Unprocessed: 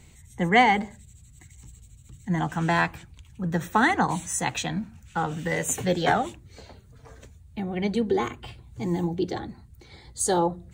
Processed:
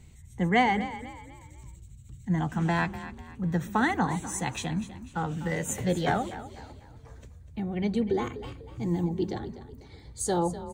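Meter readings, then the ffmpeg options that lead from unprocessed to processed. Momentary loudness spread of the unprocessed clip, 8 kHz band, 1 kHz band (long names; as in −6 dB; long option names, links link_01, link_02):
14 LU, −6.0 dB, −5.0 dB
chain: -filter_complex "[0:a]lowshelf=frequency=260:gain=8,asplit=5[link_01][link_02][link_03][link_04][link_05];[link_02]adelay=247,afreqshift=33,volume=-14dB[link_06];[link_03]adelay=494,afreqshift=66,volume=-22.4dB[link_07];[link_04]adelay=741,afreqshift=99,volume=-30.8dB[link_08];[link_05]adelay=988,afreqshift=132,volume=-39.2dB[link_09];[link_01][link_06][link_07][link_08][link_09]amix=inputs=5:normalize=0,volume=-6dB"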